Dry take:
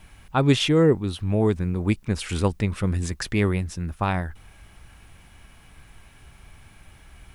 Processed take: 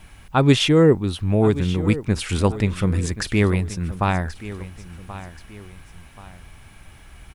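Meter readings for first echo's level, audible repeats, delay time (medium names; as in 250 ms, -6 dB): -15.0 dB, 2, 1080 ms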